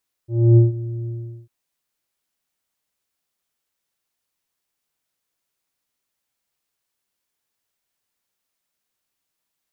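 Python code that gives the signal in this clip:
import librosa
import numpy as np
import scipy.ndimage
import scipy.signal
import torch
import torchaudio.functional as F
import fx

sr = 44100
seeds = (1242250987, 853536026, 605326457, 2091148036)

y = fx.sub_voice(sr, note=46, wave='square', cutoff_hz=320.0, q=1.1, env_oct=0.5, env_s=0.61, attack_ms=289.0, decay_s=0.15, sustain_db=-17.5, release_s=0.4, note_s=0.8, slope=24)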